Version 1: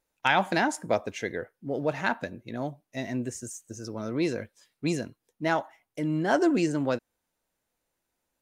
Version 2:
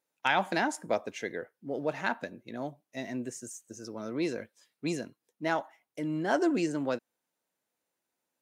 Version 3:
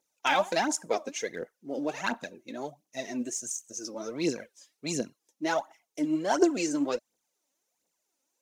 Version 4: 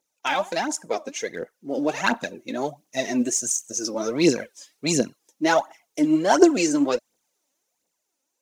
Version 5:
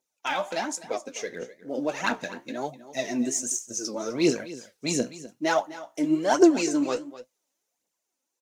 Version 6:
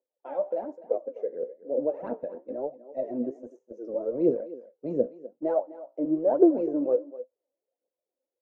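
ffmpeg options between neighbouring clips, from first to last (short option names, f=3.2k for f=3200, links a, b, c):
-af "highpass=170,volume=-3.5dB"
-af "aphaser=in_gain=1:out_gain=1:delay=3.9:decay=0.66:speed=1.4:type=triangular,equalizer=f=100:t=o:w=0.67:g=-12,equalizer=f=1.6k:t=o:w=0.67:g=-4,equalizer=f=6.3k:t=o:w=0.67:g=10"
-af "dynaudnorm=f=470:g=7:m=10dB,volume=1dB"
-af "aecho=1:1:253:0.158,flanger=delay=7.7:depth=9.1:regen=61:speed=1.1:shape=sinusoidal"
-filter_complex "[0:a]acrossover=split=210[a][b];[a]aeval=exprs='val(0)*gte(abs(val(0)),0.00708)':c=same[c];[c][b]amix=inputs=2:normalize=0,lowpass=f=530:t=q:w=5,volume=-6.5dB"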